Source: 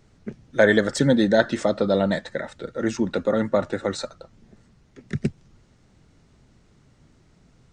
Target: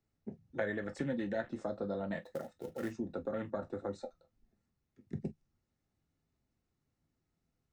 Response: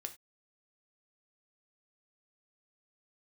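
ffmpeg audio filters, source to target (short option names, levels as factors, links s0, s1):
-filter_complex "[0:a]bandreject=f=3200:w=16,afwtdn=0.0251,acrossover=split=100|2100[s0][s1][s2];[s0]acompressor=threshold=0.00501:ratio=4[s3];[s1]acompressor=threshold=0.0501:ratio=4[s4];[s2]acompressor=threshold=0.0112:ratio=4[s5];[s3][s4][s5]amix=inputs=3:normalize=0,asettb=1/sr,asplit=3[s6][s7][s8];[s6]atrim=end=2.224[s9];[s7]atrim=start=2.22:end=2.9,asetpts=PTS-STARTPTS,afade=t=in:d=0.004:c=qsin,afade=t=out:st=0.676:d=0.004:c=qsin,acrusher=bits=5:mode=log:mix=0:aa=0.000001[s10];[s8]atrim=start=2.896[s11];[s9][s10]acrossfade=d=0.004:c1=hsin:c2=qsin[s12];[s12][s11]acrossfade=d=0.004:c1=qsin:c2=hsin[s13];[1:a]atrim=start_sample=2205,atrim=end_sample=3528,asetrate=66150,aresample=44100[s14];[s13][s14]afir=irnorm=-1:irlink=0,volume=0.75"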